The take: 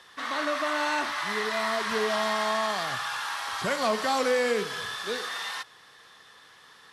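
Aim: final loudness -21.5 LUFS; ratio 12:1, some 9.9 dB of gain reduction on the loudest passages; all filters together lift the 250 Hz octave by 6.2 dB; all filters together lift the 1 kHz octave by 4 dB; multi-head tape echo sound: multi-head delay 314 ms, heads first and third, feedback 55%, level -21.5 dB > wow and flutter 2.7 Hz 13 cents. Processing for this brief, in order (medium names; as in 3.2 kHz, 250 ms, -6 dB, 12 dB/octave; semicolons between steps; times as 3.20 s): peaking EQ 250 Hz +7 dB; peaking EQ 1 kHz +4.5 dB; compression 12:1, threshold -28 dBFS; multi-head delay 314 ms, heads first and third, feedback 55%, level -21.5 dB; wow and flutter 2.7 Hz 13 cents; trim +10 dB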